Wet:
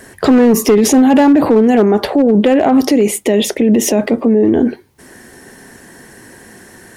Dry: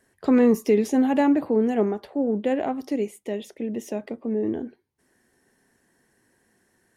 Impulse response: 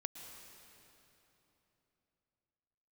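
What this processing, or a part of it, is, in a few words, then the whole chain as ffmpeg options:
loud club master: -af "acompressor=threshold=0.1:ratio=2.5,asoftclip=type=hard:threshold=0.126,alimiter=level_in=31.6:limit=0.891:release=50:level=0:latency=1,volume=0.708"

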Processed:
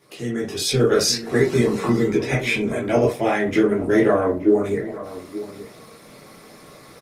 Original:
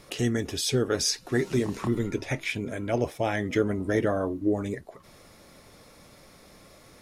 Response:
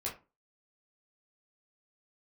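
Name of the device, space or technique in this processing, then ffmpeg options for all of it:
far-field microphone of a smart speaker: -filter_complex "[0:a]asplit=2[s0][s1];[s1]adelay=874.6,volume=0.178,highshelf=f=4000:g=-19.7[s2];[s0][s2]amix=inputs=2:normalize=0,bandreject=f=195.2:t=h:w=4,bandreject=f=390.4:t=h:w=4,bandreject=f=585.6:t=h:w=4,bandreject=f=780.8:t=h:w=4,bandreject=f=976:t=h:w=4[s3];[1:a]atrim=start_sample=2205[s4];[s3][s4]afir=irnorm=-1:irlink=0,highpass=f=130:w=0.5412,highpass=f=130:w=1.3066,dynaudnorm=f=210:g=5:m=3.55,volume=0.75" -ar 48000 -c:a libopus -b:a 20k

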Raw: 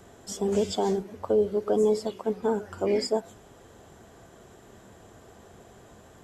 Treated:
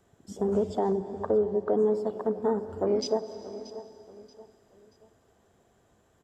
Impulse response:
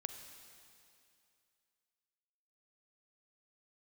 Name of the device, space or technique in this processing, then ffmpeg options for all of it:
compressed reverb return: -filter_complex "[0:a]asettb=1/sr,asplit=3[s0][s1][s2];[s0]atrim=end=0.774[s3];[s1]atrim=start=0.77:end=1.94,asetpts=PTS-STARTPTS,afade=t=in:d=0.004:c=qsin,afade=t=out:st=1.166:d=0.004:c=qsin,lowpass=7400[s4];[s2]atrim=start=1.936[s5];[s3][s4]acrossfade=d=0.004:c1=hsin:c2=qsin[s6];[s6][s5]acrossfade=d=0.004:c1=qsin:c2=hsin,afwtdn=0.0178,aecho=1:1:631|1262|1893:0.112|0.0404|0.0145,asplit=2[s7][s8];[1:a]atrim=start_sample=2205[s9];[s8][s9]afir=irnorm=-1:irlink=0,acompressor=threshold=0.0282:ratio=6,volume=1.78[s10];[s7][s10]amix=inputs=2:normalize=0,volume=0.562"

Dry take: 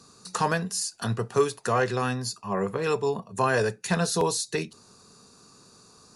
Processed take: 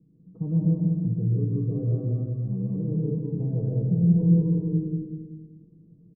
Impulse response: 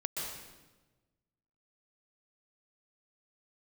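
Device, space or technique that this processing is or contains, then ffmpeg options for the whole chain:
next room: -filter_complex "[0:a]aecho=1:1:6.3:0.81,asettb=1/sr,asplit=3[s0][s1][s2];[s0]atrim=end=1.904[s3];[s1]atrim=start=1.9:end=2.67,asetpts=PTS-STARTPTS,afade=t=in:d=0.004:c=qsin,afade=t=out:st=0.766:d=0.004:c=qsin,equalizer=f=2000:t=o:w=0.77:g=8.5[s4];[s2]atrim=start=2.666[s5];[s3][s4]acrossfade=d=0.004:c1=hsin:c2=qsin[s6];[s6][s5]acrossfade=d=0.004:c1=qsin:c2=hsin,lowpass=f=290:w=0.5412,lowpass=f=290:w=1.3066,asplit=2[s7][s8];[s8]adelay=198,lowpass=f=3400:p=1,volume=0.596,asplit=2[s9][s10];[s10]adelay=198,lowpass=f=3400:p=1,volume=0.31,asplit=2[s11][s12];[s12]adelay=198,lowpass=f=3400:p=1,volume=0.31,asplit=2[s13][s14];[s14]adelay=198,lowpass=f=3400:p=1,volume=0.31[s15];[s7][s9][s11][s13][s15]amix=inputs=5:normalize=0[s16];[1:a]atrim=start_sample=2205[s17];[s16][s17]afir=irnorm=-1:irlink=0"

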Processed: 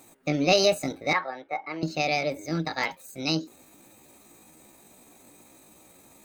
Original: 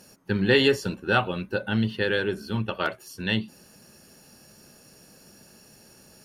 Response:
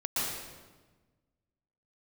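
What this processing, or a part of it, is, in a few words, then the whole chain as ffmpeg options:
chipmunk voice: -filter_complex "[0:a]asetrate=64194,aresample=44100,atempo=0.686977,asettb=1/sr,asplit=3[s0][s1][s2];[s0]atrim=end=1.134[s3];[s1]atrim=start=1.13:end=1.83,asetpts=PTS-STARTPTS,afade=t=in:d=0.004:c=qsin,afade=t=out:st=0.696:d=0.004:c=qsin,acrossover=split=450 2500:gain=0.0891 1 0.0708[s4][s5][s6];[s4][s5][s6]amix=inputs=3:normalize=0[s7];[s2]atrim=start=1.826[s8];[s3][s7]acrossfade=d=0.004:c1=hsin:c2=qsin[s9];[s9][s8]acrossfade=d=0.004:c1=qsin:c2=hsin,volume=0.891"

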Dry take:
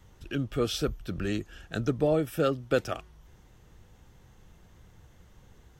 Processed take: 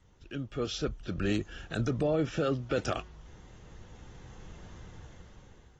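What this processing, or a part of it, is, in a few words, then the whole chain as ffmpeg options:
low-bitrate web radio: -af "dynaudnorm=f=360:g=7:m=6.31,alimiter=limit=0.237:level=0:latency=1:release=39,volume=0.447" -ar 32000 -c:a aac -b:a 24k

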